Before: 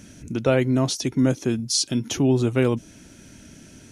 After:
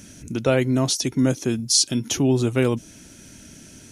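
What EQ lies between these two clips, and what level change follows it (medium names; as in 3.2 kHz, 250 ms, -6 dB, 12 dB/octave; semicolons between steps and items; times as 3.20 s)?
treble shelf 4.6 kHz +7.5 dB; 0.0 dB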